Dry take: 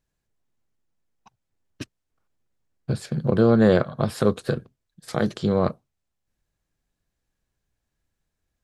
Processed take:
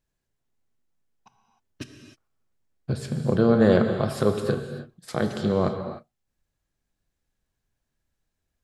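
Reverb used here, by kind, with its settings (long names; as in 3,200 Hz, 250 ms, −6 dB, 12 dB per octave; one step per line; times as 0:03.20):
reverb whose tail is shaped and stops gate 330 ms flat, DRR 5.5 dB
level −2 dB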